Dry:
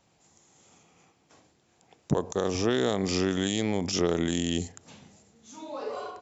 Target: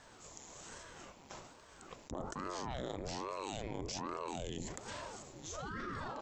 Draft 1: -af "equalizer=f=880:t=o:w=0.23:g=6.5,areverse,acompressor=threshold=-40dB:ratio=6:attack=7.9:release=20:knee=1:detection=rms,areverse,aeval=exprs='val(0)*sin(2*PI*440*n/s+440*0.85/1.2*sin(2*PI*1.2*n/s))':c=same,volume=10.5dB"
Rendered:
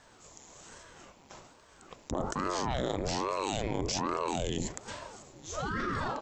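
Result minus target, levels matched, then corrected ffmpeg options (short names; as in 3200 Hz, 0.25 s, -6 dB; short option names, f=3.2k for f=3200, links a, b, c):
compressor: peak gain reduction -9 dB
-af "equalizer=f=880:t=o:w=0.23:g=6.5,areverse,acompressor=threshold=-51dB:ratio=6:attack=7.9:release=20:knee=1:detection=rms,areverse,aeval=exprs='val(0)*sin(2*PI*440*n/s+440*0.85/1.2*sin(2*PI*1.2*n/s))':c=same,volume=10.5dB"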